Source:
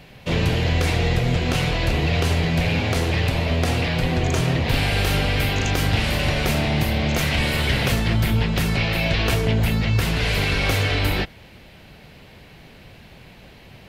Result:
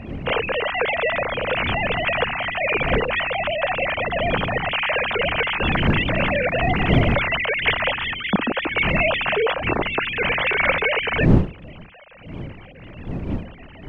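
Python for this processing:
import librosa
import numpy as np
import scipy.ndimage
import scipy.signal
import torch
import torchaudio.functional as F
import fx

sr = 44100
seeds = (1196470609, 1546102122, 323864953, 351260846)

y = fx.sine_speech(x, sr)
y = fx.dmg_wind(y, sr, seeds[0], corner_hz=210.0, level_db=-24.0)
y = F.gain(torch.from_numpy(y), -2.5).numpy()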